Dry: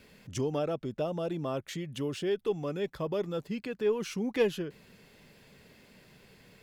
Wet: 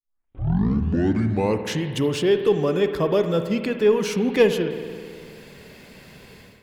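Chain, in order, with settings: tape start at the beginning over 1.90 s; AGC gain up to 14 dB; spring tank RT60 2.1 s, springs 53 ms, chirp 35 ms, DRR 7.5 dB; gain -2.5 dB

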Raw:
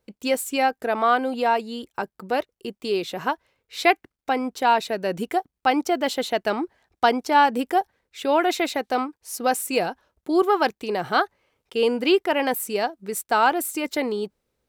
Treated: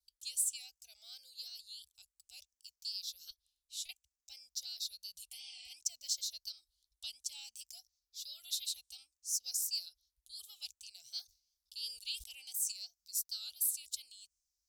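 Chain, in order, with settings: moving spectral ripple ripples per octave 0.62, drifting -0.59 Hz, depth 8 dB; three-band isolator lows -21 dB, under 590 Hz, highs -14 dB, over 5200 Hz; 3.3–3.89 compressor, threshold -31 dBFS, peak gain reduction 15.5 dB; 5.35–5.68 spectral repair 230–9400 Hz after; vibrato 2.8 Hz 73 cents; inverse Chebyshev band-stop 190–1900 Hz, stop band 60 dB; 11.22–12.72 sustainer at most 110 dB/s; gain +8 dB

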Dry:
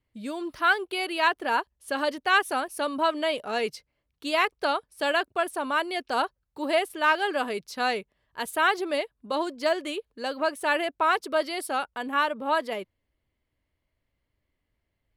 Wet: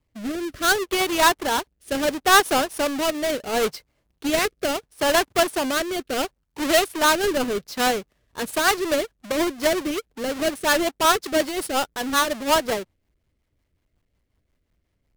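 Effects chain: half-waves squared off; rotary speaker horn 0.7 Hz, later 5.5 Hz, at 7.46; gain +3.5 dB

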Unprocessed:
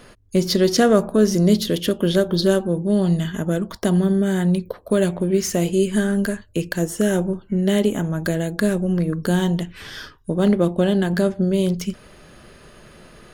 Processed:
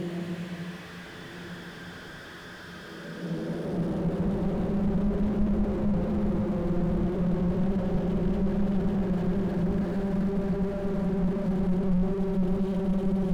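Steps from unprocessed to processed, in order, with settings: HPF 110 Hz; Paulstretch 6.7×, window 0.50 s, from 9.68; diffused feedback echo 1.343 s, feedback 41%, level -10.5 dB; slew limiter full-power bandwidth 13 Hz

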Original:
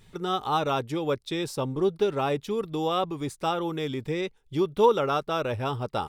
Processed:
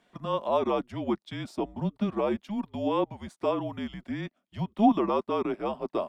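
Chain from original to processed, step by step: HPF 540 Hz 24 dB/oct; tilt -4.5 dB/oct; frequency shift -210 Hz

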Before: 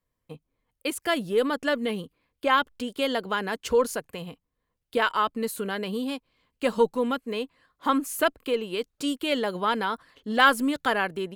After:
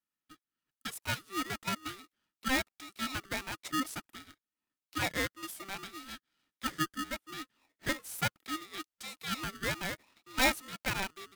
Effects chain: inverse Chebyshev high-pass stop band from 240 Hz, stop band 40 dB; vibrato 13 Hz 5.2 cents; polarity switched at an audio rate 780 Hz; gain -8.5 dB

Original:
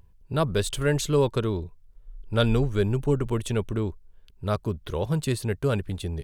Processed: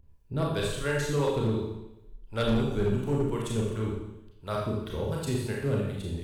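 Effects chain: harmonic tremolo 2.8 Hz, depth 70%, crossover 490 Hz; Schroeder reverb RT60 0.89 s, combs from 28 ms, DRR -3 dB; hard clip -16 dBFS, distortion -17 dB; gain -4 dB

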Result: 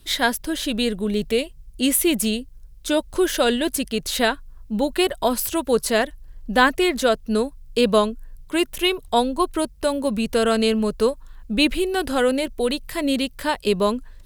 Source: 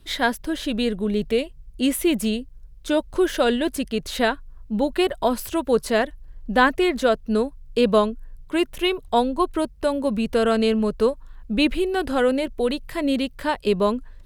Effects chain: high shelf 3900 Hz +10 dB

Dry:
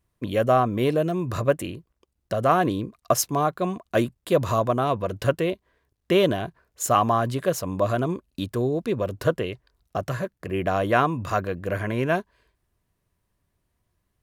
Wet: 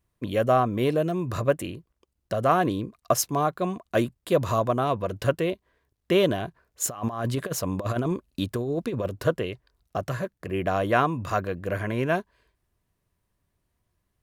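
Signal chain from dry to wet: 6.82–9.08 negative-ratio compressor -25 dBFS, ratio -0.5; gain -1.5 dB

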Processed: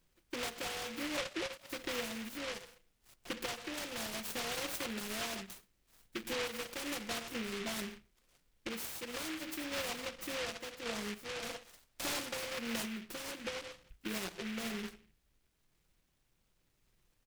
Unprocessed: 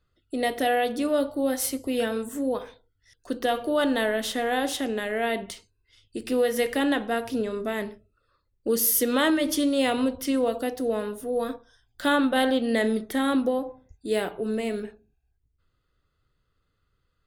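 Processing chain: 1.17–1.7 sine-wave speech; comb 5.7 ms, depth 91%; compressor 6:1, threshold -31 dBFS, peak gain reduction 17 dB; random-step tremolo; added noise pink -74 dBFS; 11.29–12.37 overdrive pedal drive 11 dB, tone 2300 Hz, clips at -26 dBFS; noise-modulated delay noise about 2100 Hz, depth 0.29 ms; gain -4.5 dB

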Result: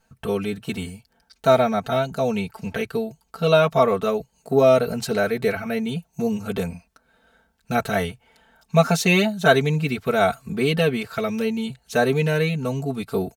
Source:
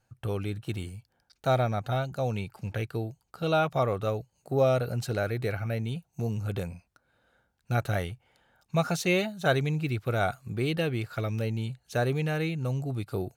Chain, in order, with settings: comb 4.5 ms, depth 97%; gain +6 dB

